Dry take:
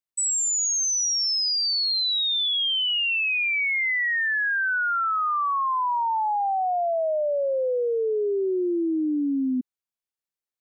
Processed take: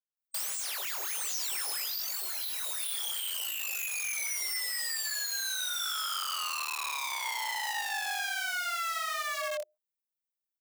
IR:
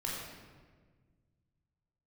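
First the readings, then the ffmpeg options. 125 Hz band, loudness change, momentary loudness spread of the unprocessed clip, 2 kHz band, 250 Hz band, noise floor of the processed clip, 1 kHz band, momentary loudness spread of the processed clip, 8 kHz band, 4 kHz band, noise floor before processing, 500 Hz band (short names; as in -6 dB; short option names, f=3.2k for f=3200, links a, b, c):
n/a, -9.0 dB, 4 LU, -10.0 dB, under -40 dB, under -85 dBFS, -12.0 dB, 2 LU, -7.5 dB, -10.0 dB, under -85 dBFS, -20.0 dB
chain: -filter_complex "[0:a]acrossover=split=710|2500[a][b][c];[b]adelay=140[d];[c]adelay=170[e];[a][d][e]amix=inputs=3:normalize=0,afftdn=nr=15:nf=-35,aemphasis=mode=production:type=bsi,aeval=exprs='(mod(18.8*val(0)+1,2)-1)/18.8':c=same,flanger=delay=19:depth=5.6:speed=1.4,lowshelf=f=260:g=-5,alimiter=level_in=5dB:limit=-24dB:level=0:latency=1:release=259,volume=-5dB,afreqshift=350,volume=2dB"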